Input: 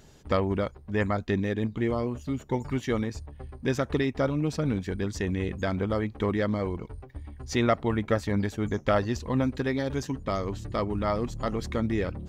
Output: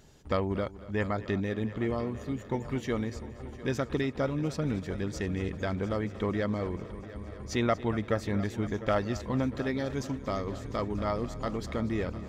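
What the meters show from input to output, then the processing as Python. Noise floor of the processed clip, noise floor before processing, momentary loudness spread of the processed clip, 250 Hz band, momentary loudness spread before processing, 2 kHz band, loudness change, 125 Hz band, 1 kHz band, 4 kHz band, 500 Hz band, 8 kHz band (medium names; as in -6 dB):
-45 dBFS, -50 dBFS, 5 LU, -3.0 dB, 6 LU, -3.0 dB, -3.5 dB, -3.0 dB, -3.0 dB, -3.0 dB, -3.0 dB, -3.0 dB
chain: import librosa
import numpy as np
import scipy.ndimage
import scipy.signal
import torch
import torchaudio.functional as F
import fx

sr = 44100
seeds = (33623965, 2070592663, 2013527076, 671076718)

p1 = x + fx.echo_heads(x, sr, ms=234, heads='first and third', feedback_pct=70, wet_db=-17.5, dry=0)
y = F.gain(torch.from_numpy(p1), -3.5).numpy()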